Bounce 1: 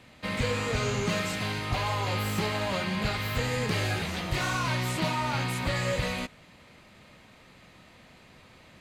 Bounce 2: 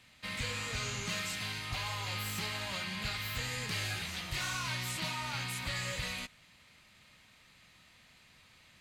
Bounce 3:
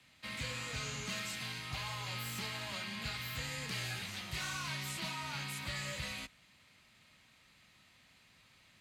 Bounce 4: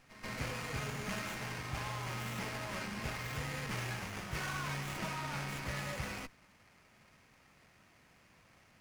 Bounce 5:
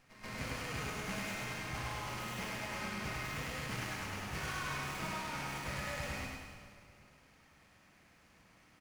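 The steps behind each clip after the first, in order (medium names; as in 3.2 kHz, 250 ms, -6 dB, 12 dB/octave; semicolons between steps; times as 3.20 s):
amplifier tone stack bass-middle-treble 5-5-5; trim +4.5 dB
frequency shift +17 Hz; trim -3.5 dB
reverse echo 134 ms -13 dB; sliding maximum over 9 samples; trim +2.5 dB
feedback delay 103 ms, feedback 50%, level -3 dB; on a send at -7 dB: reverberation RT60 2.0 s, pre-delay 46 ms; on the sum: trim -3 dB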